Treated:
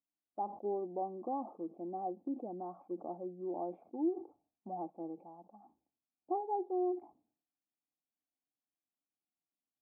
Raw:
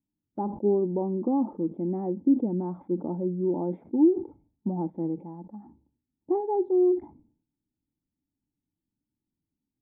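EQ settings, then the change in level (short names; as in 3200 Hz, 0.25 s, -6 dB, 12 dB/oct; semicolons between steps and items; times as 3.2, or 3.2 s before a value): dynamic EQ 340 Hz, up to +4 dB, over -37 dBFS, Q 7; vowel filter a; +4.0 dB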